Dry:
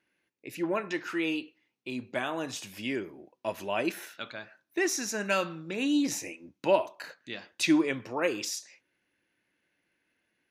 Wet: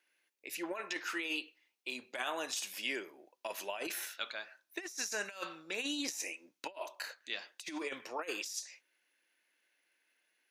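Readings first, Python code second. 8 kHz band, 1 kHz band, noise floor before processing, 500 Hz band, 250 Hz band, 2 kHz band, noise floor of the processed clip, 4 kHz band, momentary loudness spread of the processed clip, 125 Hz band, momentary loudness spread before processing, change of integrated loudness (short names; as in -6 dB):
-4.5 dB, -8.0 dB, -80 dBFS, -12.5 dB, -15.5 dB, -5.0 dB, -82 dBFS, -2.5 dB, 9 LU, -23.5 dB, 15 LU, -8.5 dB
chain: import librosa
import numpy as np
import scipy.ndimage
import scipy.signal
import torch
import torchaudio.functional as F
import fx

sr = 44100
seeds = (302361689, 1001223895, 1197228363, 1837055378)

y = scipy.signal.sosfilt(scipy.signal.butter(2, 490.0, 'highpass', fs=sr, output='sos'), x)
y = fx.high_shelf(y, sr, hz=2800.0, db=8.5)
y = fx.over_compress(y, sr, threshold_db=-32.0, ratio=-0.5)
y = y * 10.0 ** (-6.0 / 20.0)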